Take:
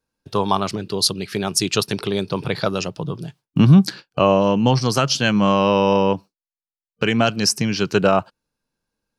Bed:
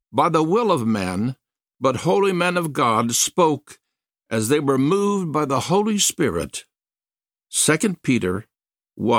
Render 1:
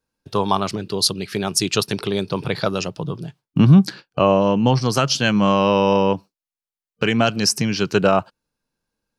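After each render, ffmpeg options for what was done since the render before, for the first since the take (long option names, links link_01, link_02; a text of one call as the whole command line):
ffmpeg -i in.wav -filter_complex "[0:a]asettb=1/sr,asplit=3[link_01][link_02][link_03];[link_01]atrim=end=3.194[link_04];[link_02]atrim=start=3.19:end=4.93,asetpts=PTS-STARTPTS,afade=type=in:duration=0.004:curve=qsin,afade=type=out:start_time=1.736:duration=0.004:curve=qsin,highshelf=frequency=3700:gain=-5[link_05];[link_03]atrim=start=4.926[link_06];[link_04][link_05]acrossfade=duration=0.004:curve1=hsin:curve2=qsin[link_07];[link_07][link_06]acrossfade=duration=0.004:curve1=qsin:curve2=hsin,asettb=1/sr,asplit=3[link_08][link_09][link_10];[link_08]atrim=end=7.054[link_11];[link_09]atrim=start=7.05:end=7.63,asetpts=PTS-STARTPTS,afade=type=in:duration=0.004:curve=qsin,afade=type=out:start_time=0.576:duration=0.004:curve=qsin,acompressor=mode=upward:threshold=-19dB:ratio=2.5:attack=3.2:release=140:knee=2.83:detection=peak[link_12];[link_10]atrim=start=7.626[link_13];[link_11][link_12]acrossfade=duration=0.004:curve1=hsin:curve2=qsin[link_14];[link_14][link_13]acrossfade=duration=0.004:curve1=qsin:curve2=hsin" out.wav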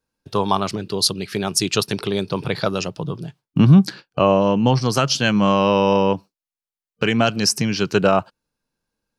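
ffmpeg -i in.wav -af anull out.wav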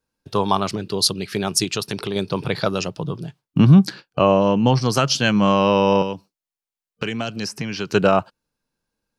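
ffmpeg -i in.wav -filter_complex "[0:a]asettb=1/sr,asplit=3[link_01][link_02][link_03];[link_01]atrim=end=1.644[link_04];[link_02]atrim=start=1.64:end=2.16,asetpts=PTS-STARTPTS,afade=type=in:duration=0.004:curve=qsin,afade=type=out:start_time=0.516:duration=0.004:curve=qsin,acompressor=threshold=-23dB:ratio=2:attack=3.2:release=140:knee=1:detection=peak[link_05];[link_03]atrim=start=2.156[link_06];[link_04][link_05]acrossfade=duration=0.004:curve1=hsin:curve2=qsin[link_07];[link_07][link_06]acrossfade=duration=0.004:curve1=qsin:curve2=hsin,asettb=1/sr,asplit=3[link_08][link_09][link_10];[link_08]atrim=end=6.024[link_11];[link_09]atrim=start=6.02:end=7.9,asetpts=PTS-STARTPTS,afade=type=in:duration=0.004:curve=qsin,afade=type=out:start_time=1.876:duration=0.004:curve=qsin,acrossover=split=500|3100[link_12][link_13][link_14];[link_12]acompressor=threshold=-27dB:ratio=4[link_15];[link_13]acompressor=threshold=-30dB:ratio=4[link_16];[link_14]acompressor=threshold=-34dB:ratio=4[link_17];[link_15][link_16][link_17]amix=inputs=3:normalize=0[link_18];[link_10]atrim=start=7.896[link_19];[link_11][link_18]acrossfade=duration=0.004:curve1=hsin:curve2=qsin[link_20];[link_20][link_19]acrossfade=duration=0.004:curve1=qsin:curve2=hsin" out.wav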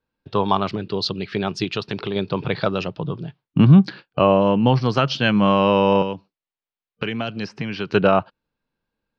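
ffmpeg -i in.wav -af "lowpass=frequency=3900:width=0.5412,lowpass=frequency=3900:width=1.3066" out.wav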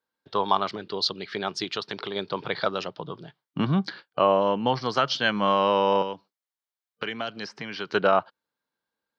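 ffmpeg -i in.wav -af "highpass=frequency=780:poles=1,equalizer=frequency=2600:width_type=o:width=0.21:gain=-11" out.wav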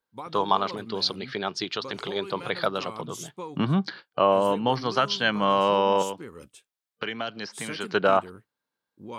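ffmpeg -i in.wav -i bed.wav -filter_complex "[1:a]volume=-21dB[link_01];[0:a][link_01]amix=inputs=2:normalize=0" out.wav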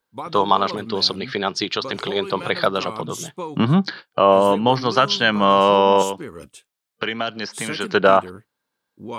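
ffmpeg -i in.wav -af "volume=7dB,alimiter=limit=-2dB:level=0:latency=1" out.wav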